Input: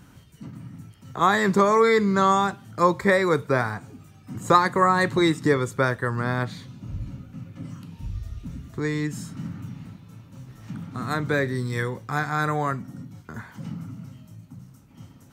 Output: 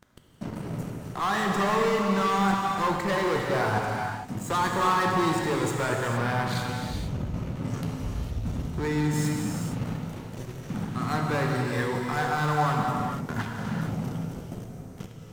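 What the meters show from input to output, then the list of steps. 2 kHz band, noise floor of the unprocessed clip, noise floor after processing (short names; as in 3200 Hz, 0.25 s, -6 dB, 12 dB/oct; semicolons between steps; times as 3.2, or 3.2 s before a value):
-3.5 dB, -51 dBFS, -42 dBFS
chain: sample leveller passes 5; reverse; compressor 6:1, threshold -20 dBFS, peak gain reduction 13.5 dB; reverse; dynamic EQ 870 Hz, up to +6 dB, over -38 dBFS, Q 2.1; non-linear reverb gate 0.49 s flat, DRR -0.5 dB; gain -9 dB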